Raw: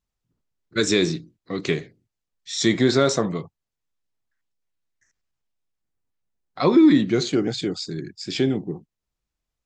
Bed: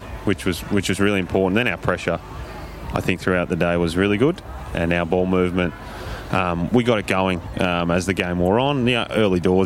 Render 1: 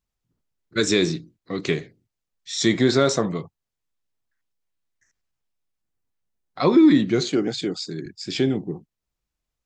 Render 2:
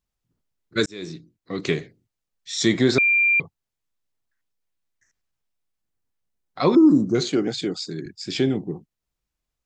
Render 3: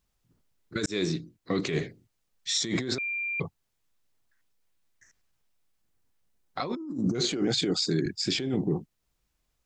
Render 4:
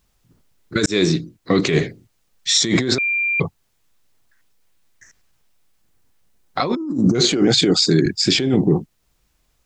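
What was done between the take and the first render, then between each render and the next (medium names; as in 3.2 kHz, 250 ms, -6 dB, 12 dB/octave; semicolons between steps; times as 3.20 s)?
7.24–8.06 s: high-pass 150 Hz
0.86–1.63 s: fade in; 2.98–3.40 s: bleep 2.38 kHz -15 dBFS; 6.75–7.15 s: elliptic band-stop 1.2–5.5 kHz
compressor with a negative ratio -28 dBFS, ratio -1; peak limiter -17.5 dBFS, peak gain reduction 9.5 dB
trim +11.5 dB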